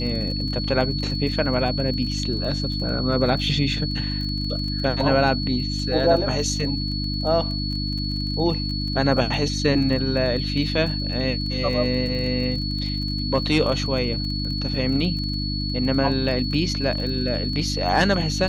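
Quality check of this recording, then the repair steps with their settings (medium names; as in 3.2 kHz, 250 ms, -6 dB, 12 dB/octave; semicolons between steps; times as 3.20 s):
crackle 23 per s -30 dBFS
hum 50 Hz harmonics 6 -27 dBFS
whine 4.4 kHz -29 dBFS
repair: de-click; band-stop 4.4 kHz, Q 30; de-hum 50 Hz, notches 6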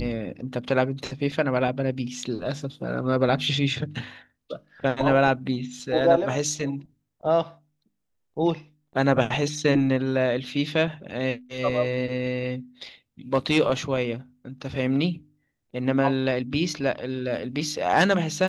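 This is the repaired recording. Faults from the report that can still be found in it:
nothing left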